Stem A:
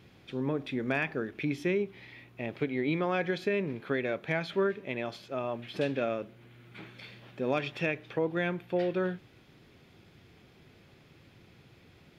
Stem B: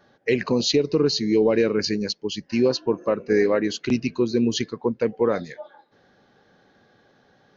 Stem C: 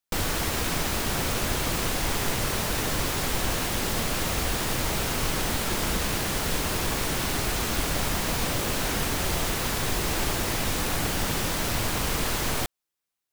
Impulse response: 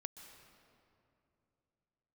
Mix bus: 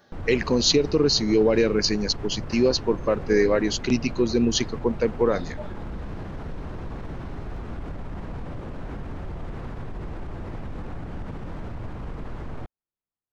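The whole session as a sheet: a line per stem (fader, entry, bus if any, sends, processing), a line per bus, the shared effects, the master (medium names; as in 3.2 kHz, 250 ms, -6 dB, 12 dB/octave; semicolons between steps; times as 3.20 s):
mute
-0.5 dB, 0.00 s, no bus, no send, none
-7.5 dB, 0.00 s, bus A, no send, low-pass 1.3 kHz 12 dB/octave
bus A: 0.0 dB, bass shelf 280 Hz +9.5 dB; peak limiter -26 dBFS, peak gain reduction 10 dB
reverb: none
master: treble shelf 5.7 kHz +10 dB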